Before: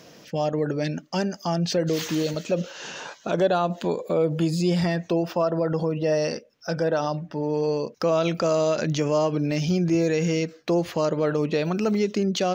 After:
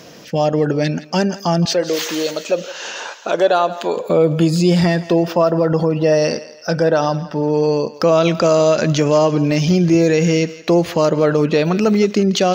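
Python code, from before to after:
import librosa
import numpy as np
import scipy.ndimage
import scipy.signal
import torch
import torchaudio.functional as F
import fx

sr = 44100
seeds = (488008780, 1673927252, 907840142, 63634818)

y = fx.highpass(x, sr, hz=410.0, slope=12, at=(1.65, 3.97))
y = fx.echo_thinned(y, sr, ms=167, feedback_pct=47, hz=560.0, wet_db=-15.5)
y = y * librosa.db_to_amplitude(8.5)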